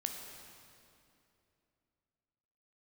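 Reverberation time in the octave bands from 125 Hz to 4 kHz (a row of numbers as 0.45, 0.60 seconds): 3.3, 3.2, 3.0, 2.5, 2.4, 2.2 seconds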